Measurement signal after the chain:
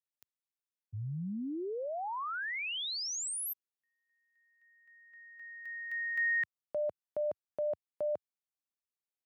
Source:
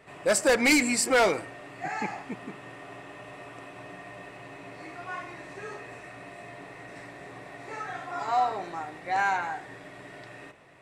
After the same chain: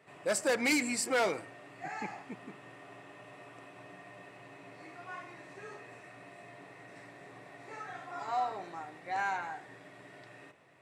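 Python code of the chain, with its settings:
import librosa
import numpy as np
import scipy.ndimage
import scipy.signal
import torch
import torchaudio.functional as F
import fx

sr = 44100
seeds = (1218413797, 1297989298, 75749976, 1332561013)

y = scipy.signal.sosfilt(scipy.signal.butter(4, 90.0, 'highpass', fs=sr, output='sos'), x)
y = F.gain(torch.from_numpy(y), -7.5).numpy()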